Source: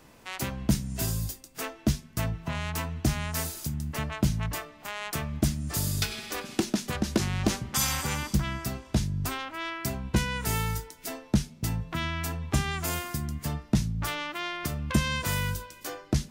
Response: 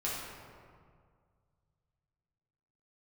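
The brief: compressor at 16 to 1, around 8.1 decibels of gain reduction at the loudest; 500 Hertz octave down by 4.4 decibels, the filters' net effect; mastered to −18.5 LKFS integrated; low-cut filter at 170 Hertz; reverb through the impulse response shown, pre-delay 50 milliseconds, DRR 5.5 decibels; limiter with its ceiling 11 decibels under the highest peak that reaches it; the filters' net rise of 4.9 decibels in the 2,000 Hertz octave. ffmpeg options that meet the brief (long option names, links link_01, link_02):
-filter_complex "[0:a]highpass=170,equalizer=frequency=500:width_type=o:gain=-6.5,equalizer=frequency=2000:width_type=o:gain=6.5,acompressor=threshold=-30dB:ratio=16,alimiter=limit=-24dB:level=0:latency=1,asplit=2[link_01][link_02];[1:a]atrim=start_sample=2205,adelay=50[link_03];[link_02][link_03]afir=irnorm=-1:irlink=0,volume=-10.5dB[link_04];[link_01][link_04]amix=inputs=2:normalize=0,volume=17.5dB"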